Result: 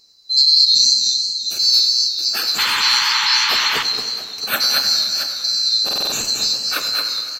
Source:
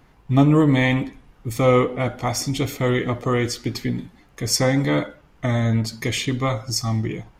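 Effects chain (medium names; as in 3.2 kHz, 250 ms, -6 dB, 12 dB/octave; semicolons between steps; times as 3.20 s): split-band scrambler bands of 4 kHz; treble shelf 7.4 kHz +5.5 dB; on a send: multi-tap echo 223/673 ms -4/-11.5 dB; on the sum: plate-style reverb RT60 2.7 s, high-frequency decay 0.9×, DRR 7.5 dB; painted sound noise, 2.58–3.83 s, 830–3700 Hz -20 dBFS; bass shelf 430 Hz +7.5 dB; buffer glitch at 5.84 s, samples 2048, times 5; modulated delay 97 ms, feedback 69%, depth 151 cents, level -13 dB; trim -1 dB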